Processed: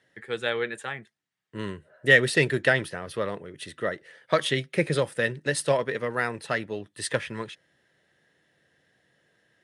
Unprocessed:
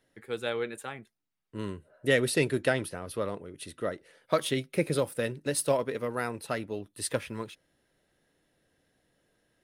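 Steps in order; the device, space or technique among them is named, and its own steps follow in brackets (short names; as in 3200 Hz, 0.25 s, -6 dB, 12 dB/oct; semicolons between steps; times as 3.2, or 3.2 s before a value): car door speaker (speaker cabinet 94–9000 Hz, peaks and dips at 140 Hz +3 dB, 270 Hz -5 dB, 1800 Hz +10 dB, 3200 Hz +4 dB); gain +3 dB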